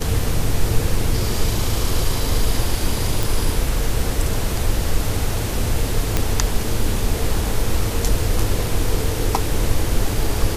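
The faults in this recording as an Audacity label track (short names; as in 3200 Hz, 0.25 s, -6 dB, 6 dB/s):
3.230000	3.230000	pop
6.170000	6.170000	pop -3 dBFS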